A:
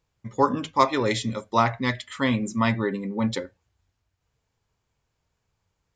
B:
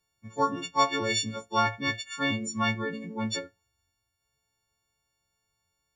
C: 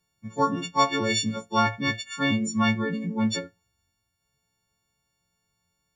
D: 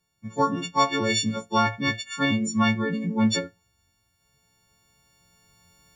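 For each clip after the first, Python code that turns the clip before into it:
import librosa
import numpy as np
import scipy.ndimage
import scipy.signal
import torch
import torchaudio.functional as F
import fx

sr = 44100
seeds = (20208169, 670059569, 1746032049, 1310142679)

y1 = fx.freq_snap(x, sr, grid_st=4)
y1 = y1 * 10.0 ** (-7.0 / 20.0)
y2 = fx.peak_eq(y1, sr, hz=180.0, db=9.5, octaves=0.8)
y2 = y2 * 10.0 ** (2.0 / 20.0)
y3 = fx.recorder_agc(y2, sr, target_db=-11.5, rise_db_per_s=5.3, max_gain_db=30)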